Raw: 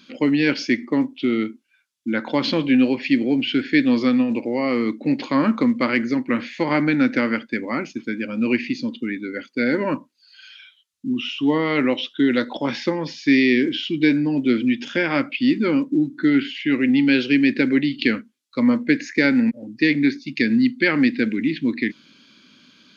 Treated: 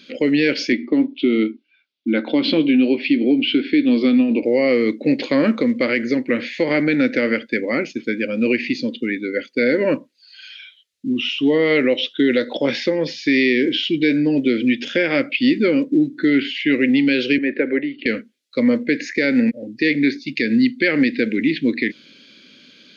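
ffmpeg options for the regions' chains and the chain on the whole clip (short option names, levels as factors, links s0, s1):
-filter_complex "[0:a]asettb=1/sr,asplit=3[s0][s1][s2];[s0]atrim=end=0.724[s3];[s1]atrim=start=0.72:end=4.43,asetpts=PTS-STARTPTS,afade=t=in:d=0.004:c=qsin,afade=t=out:st=3.706:d=0.004:c=qsin,highpass=160,equalizer=f=290:t=q:w=4:g=7,equalizer=f=510:t=q:w=4:g=-7,equalizer=f=1800:t=q:w=4:g=-10,lowpass=f=4200:w=0.5412,lowpass=f=4200:w=1.3066,asplit=2[s4][s5];[s5]adelay=13,volume=0.251[s6];[s4][s6]amix=inputs=2:normalize=0,atrim=end_sample=163611[s7];[s2]atrim=start=4.426[s8];[s3][s7]acrossfade=d=0.004:c1=hsin:c2=qsin[s9];[s9][s8]acrossfade=d=0.004:c1=qsin:c2=hsin,asettb=1/sr,asplit=3[s10][s11][s12];[s10]atrim=end=17.384[s13];[s11]atrim=start=17.38:end=18.06,asetpts=PTS-STARTPTS,afade=t=in:d=0.004:c=qsin,afade=t=out:st=0.676:d=0.004:c=qsin,acrossover=split=2500[s14][s15];[s15]acompressor=threshold=0.01:ratio=4:attack=1:release=60[s16];[s14][s16]amix=inputs=2:normalize=0,acrossover=split=330 2300:gain=0.178 1 0.0891[s17][s18][s19];[s17][s18][s19]amix=inputs=3:normalize=0[s20];[s12]atrim=start=18.056[s21];[s13][s20]acrossfade=d=0.004:c1=hsin:c2=qsin[s22];[s22][s21]acrossfade=d=0.004:c1=qsin:c2=hsin,equalizer=f=500:t=o:w=1:g=12,equalizer=f=1000:t=o:w=1:g=-10,equalizer=f=2000:t=o:w=1:g=7,equalizer=f=4000:t=o:w=1:g=5,alimiter=limit=0.422:level=0:latency=1:release=123"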